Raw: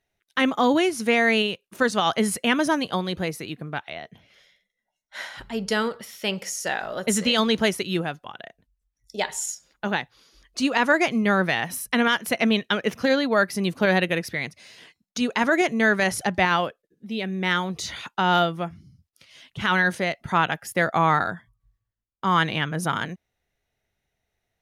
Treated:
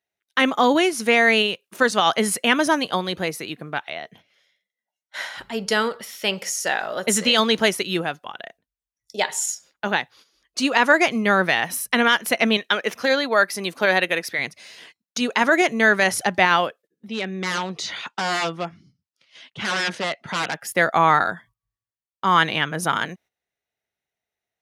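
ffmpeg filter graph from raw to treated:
-filter_complex "[0:a]asettb=1/sr,asplit=3[s0][s1][s2];[s0]atrim=end=12.574[s3];[s1]atrim=start=12.57:end=14.39,asetpts=PTS-STARTPTS,afade=t=in:d=0.004:c=qsin,afade=t=out:st=1.816:d=0.004:c=qsin,highpass=58,equalizer=f=110:w=0.45:g=-9,bandreject=f=2900:w=24[s4];[s2]atrim=start=14.386[s5];[s3][s4]acrossfade=d=0.004:c1=hsin:c2=qsin[s6];[s6][s5]acrossfade=d=0.004:c1=qsin:c2=hsin,asettb=1/sr,asplit=3[s7][s8][s9];[s7]atrim=end=17.084[s10];[s8]atrim=start=17.08:end=20.61,asetpts=PTS-STARTPTS,afade=t=in:d=0.004:c=qsin,afade=t=out:st=3.526:d=0.004:c=qsin,aeval=exprs='0.0841*(abs(mod(val(0)/0.0841+3,4)-2)-1)':c=same,highpass=110,lowpass=5700[s11];[s9]atrim=start=20.606[s12];[s10][s11]acrossfade=d=0.004:c1=hsin:c2=qsin[s13];[s13][s12]acrossfade=d=0.004:c1=qsin:c2=hsin,agate=range=0.282:threshold=0.00282:ratio=16:detection=peak,highpass=f=210:p=1,lowshelf=f=330:g=-3.5,volume=1.68"

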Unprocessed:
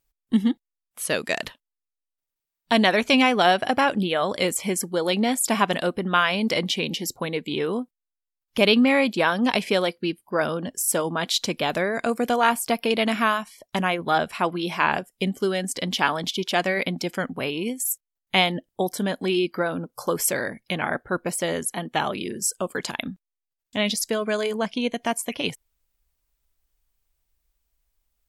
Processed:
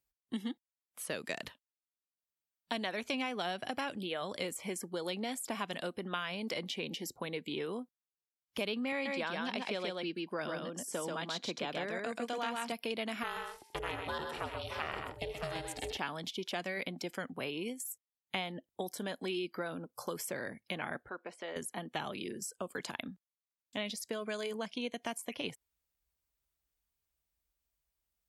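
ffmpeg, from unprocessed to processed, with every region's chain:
-filter_complex "[0:a]asettb=1/sr,asplit=3[s0][s1][s2];[s0]atrim=end=8.924[s3];[s1]atrim=start=8.92:end=12.72,asetpts=PTS-STARTPTS,afade=t=in:d=0.004:c=qsin,afade=t=out:st=3.796:d=0.004:c=qsin,highpass=130,lowpass=7000,aecho=1:1:133:0.708,atrim=end_sample=167580[s4];[s2]atrim=start=12.716[s5];[s3][s4]acrossfade=d=0.004:c1=hsin:c2=qsin[s6];[s6][s5]acrossfade=d=0.004:c1=qsin:c2=hsin,asettb=1/sr,asplit=3[s7][s8][s9];[s7]atrim=end=13.234[s10];[s8]atrim=start=13.23:end=15.97,asetpts=PTS-STARTPTS,afade=t=in:d=0.004:c=qsin,afade=t=out:st=2.736:d=0.004:c=qsin,aeval=exprs='val(0)+0.002*sin(2*PI*650*n/s)':c=same,aeval=exprs='val(0)*sin(2*PI*240*n/s)':c=same,aecho=1:1:82|128|174|621:0.188|0.447|0.119|0.299,atrim=end_sample=120834[s11];[s9]atrim=start=15.966[s12];[s10][s11]acrossfade=d=0.004:c1=hsin:c2=qsin[s13];[s13][s12]acrossfade=d=0.004:c1=qsin:c2=hsin,asettb=1/sr,asplit=3[s14][s15][s16];[s14]atrim=end=21.094[s17];[s15]atrim=start=21.09:end=21.56,asetpts=PTS-STARTPTS,afade=t=in:d=0.004:c=qsin,afade=t=out:st=0.466:d=0.004:c=qsin,bandreject=f=550:w=18,acompressor=threshold=0.0398:ratio=2.5:attack=3.2:release=140:knee=1:detection=peak,highpass=420,lowpass=3100[s18];[s16]atrim=start=21.556[s19];[s17][s18]acrossfade=d=0.004:c1=hsin:c2=qsin[s20];[s20][s19]acrossfade=d=0.004:c1=qsin:c2=hsin,highpass=55,acrossover=split=280|2300[s21][s22][s23];[s21]acompressor=threshold=0.0126:ratio=4[s24];[s22]acompressor=threshold=0.0355:ratio=4[s25];[s23]acompressor=threshold=0.0224:ratio=4[s26];[s24][s25][s26]amix=inputs=3:normalize=0,volume=0.376"

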